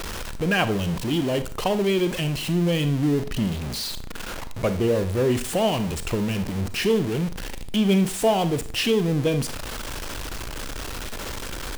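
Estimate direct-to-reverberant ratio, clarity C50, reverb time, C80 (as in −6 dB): 10.5 dB, 13.5 dB, 0.40 s, 18.0 dB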